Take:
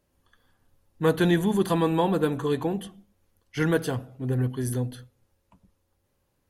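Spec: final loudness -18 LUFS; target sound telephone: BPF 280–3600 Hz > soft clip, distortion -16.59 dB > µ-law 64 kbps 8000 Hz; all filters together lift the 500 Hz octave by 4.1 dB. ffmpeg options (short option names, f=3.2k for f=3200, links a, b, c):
-af "highpass=280,lowpass=3.6k,equalizer=f=500:t=o:g=5.5,asoftclip=threshold=-14dB,volume=8.5dB" -ar 8000 -c:a pcm_mulaw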